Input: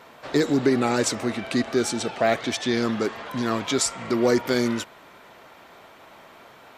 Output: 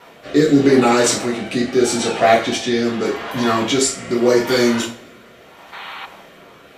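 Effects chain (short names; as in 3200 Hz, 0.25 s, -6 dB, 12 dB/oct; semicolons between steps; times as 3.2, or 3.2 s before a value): two-slope reverb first 0.36 s, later 2 s, from -27 dB, DRR -5 dB; spectral gain 5.73–6.05, 760–4500 Hz +11 dB; rotary speaker horn 0.8 Hz; gain +3.5 dB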